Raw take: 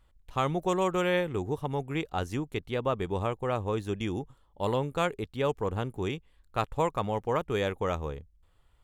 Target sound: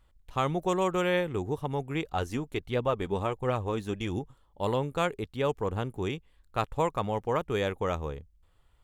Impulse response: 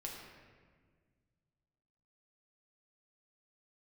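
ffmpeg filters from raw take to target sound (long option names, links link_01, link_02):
-filter_complex "[0:a]asettb=1/sr,asplit=3[link_01][link_02][link_03];[link_01]atrim=end=2.064[link_04];[link_02]atrim=start=2.06:end=4.19,asetpts=PTS-STARTPTS,afade=type=in:duration=0.004:curve=qsin,afade=type=out:start_time=2.126:duration=0.004:curve=qsin,aphaser=in_gain=1:out_gain=1:delay=5:decay=0.35:speed=1.4:type=triangular[link_05];[link_03]atrim=start=4.186[link_06];[link_04][link_05]acrossfade=duration=0.004:curve1=hsin:curve2=qsin[link_07];[link_07][link_06]acrossfade=duration=0.004:curve1=qsin:curve2=hsin"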